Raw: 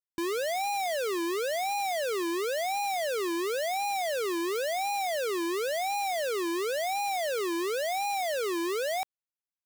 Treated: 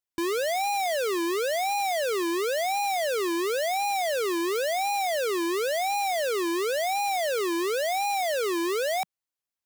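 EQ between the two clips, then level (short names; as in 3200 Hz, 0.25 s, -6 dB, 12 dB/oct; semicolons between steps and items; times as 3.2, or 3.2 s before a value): bell 180 Hz -10 dB 0.29 oct; +3.5 dB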